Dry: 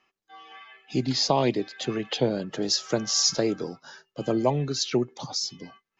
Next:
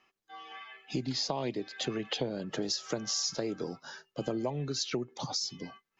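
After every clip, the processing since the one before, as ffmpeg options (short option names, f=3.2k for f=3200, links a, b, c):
-af "acompressor=threshold=-30dB:ratio=6"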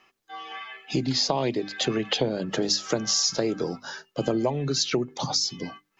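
-af "bandreject=f=50:t=h:w=6,bandreject=f=100:t=h:w=6,bandreject=f=150:t=h:w=6,bandreject=f=200:t=h:w=6,bandreject=f=250:t=h:w=6,bandreject=f=300:t=h:w=6,volume=8.5dB"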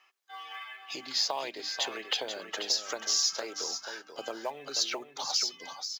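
-af "highpass=790,acrusher=bits=7:mode=log:mix=0:aa=0.000001,aecho=1:1:486:0.376,volume=-3.5dB"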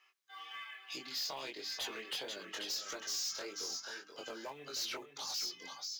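-af "flanger=delay=20:depth=3:speed=1.7,equalizer=f=710:w=1.3:g=-7,asoftclip=type=tanh:threshold=-35dB"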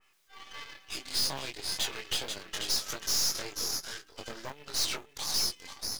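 -af "aeval=exprs='val(0)+0.5*0.00316*sgn(val(0))':c=same,aeval=exprs='0.02*(cos(1*acos(clip(val(0)/0.02,-1,1)))-cos(1*PI/2))+0.01*(cos(2*acos(clip(val(0)/0.02,-1,1)))-cos(2*PI/2))+0.00447*(cos(3*acos(clip(val(0)/0.02,-1,1)))-cos(3*PI/2))+0.000631*(cos(7*acos(clip(val(0)/0.02,-1,1)))-cos(7*PI/2))':c=same,adynamicequalizer=threshold=0.00355:dfrequency=2500:dqfactor=0.7:tfrequency=2500:tqfactor=0.7:attack=5:release=100:ratio=0.375:range=2:mode=boostabove:tftype=highshelf,volume=4dB"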